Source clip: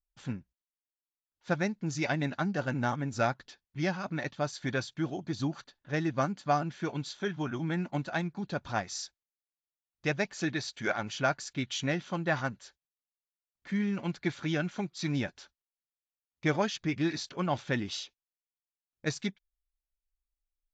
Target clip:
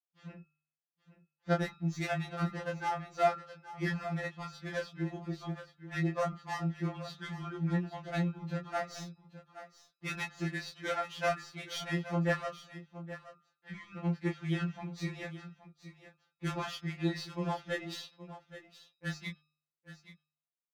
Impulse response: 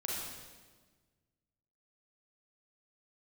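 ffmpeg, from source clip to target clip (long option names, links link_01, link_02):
-filter_complex "[0:a]aeval=exprs='if(lt(val(0),0),0.447*val(0),val(0))':channel_layout=same,highpass=frequency=78:width=0.5412,highpass=frequency=78:width=1.3066,highshelf=frequency=3500:gain=6,bandreject=frequency=151.8:width_type=h:width=4,bandreject=frequency=303.6:width_type=h:width=4,bandreject=frequency=455.4:width_type=h:width=4,bandreject=frequency=607.2:width_type=h:width=4,bandreject=frequency=759:width_type=h:width=4,bandreject=frequency=910.8:width_type=h:width=4,bandreject=frequency=1062.6:width_type=h:width=4,bandreject=frequency=1214.4:width_type=h:width=4,bandreject=frequency=1366.2:width_type=h:width=4,bandreject=frequency=1518:width_type=h:width=4,bandreject=frequency=1669.8:width_type=h:width=4,bandreject=frequency=1821.6:width_type=h:width=4,bandreject=frequency=1973.4:width_type=h:width=4,bandreject=frequency=2125.2:width_type=h:width=4,bandreject=frequency=2277:width_type=h:width=4,bandreject=frequency=2428.8:width_type=h:width=4,bandreject=frequency=2580.6:width_type=h:width=4,bandreject=frequency=2732.4:width_type=h:width=4,bandreject=frequency=2884.2:width_type=h:width=4,bandreject=frequency=3036:width_type=h:width=4,bandreject=frequency=3187.8:width_type=h:width=4,bandreject=frequency=3339.6:width_type=h:width=4,bandreject=frequency=3491.4:width_type=h:width=4,bandreject=frequency=3643.2:width_type=h:width=4,bandreject=frequency=3795:width_type=h:width=4,bandreject=frequency=3946.8:width_type=h:width=4,bandreject=frequency=4098.6:width_type=h:width=4,bandreject=frequency=4250.4:width_type=h:width=4,bandreject=frequency=4402.2:width_type=h:width=4,bandreject=frequency=4554:width_type=h:width=4,bandreject=frequency=4705.8:width_type=h:width=4,bandreject=frequency=4857.6:width_type=h:width=4,bandreject=frequency=5009.4:width_type=h:width=4,bandreject=frequency=5161.2:width_type=h:width=4,bandreject=frequency=5313:width_type=h:width=4,bandreject=frequency=5464.8:width_type=h:width=4,adynamicsmooth=sensitivity=5.5:basefreq=2100,asplit=2[link_01][link_02];[link_02]adelay=19,volume=-3dB[link_03];[link_01][link_03]amix=inputs=2:normalize=0,asplit=2[link_04][link_05];[link_05]aecho=0:1:823:0.2[link_06];[link_04][link_06]amix=inputs=2:normalize=0,afftfilt=real='re*2.83*eq(mod(b,8),0)':imag='im*2.83*eq(mod(b,8),0)':win_size=2048:overlap=0.75"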